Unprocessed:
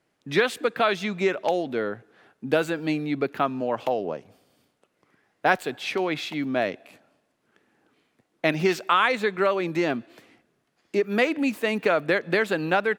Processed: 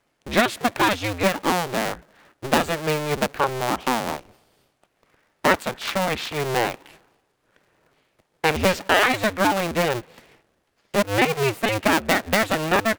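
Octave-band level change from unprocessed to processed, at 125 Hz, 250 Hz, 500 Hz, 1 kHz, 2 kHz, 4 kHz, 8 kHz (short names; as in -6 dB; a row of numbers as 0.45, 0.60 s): +6.0, +1.5, +1.0, +4.5, +3.5, +6.5, +13.0 dB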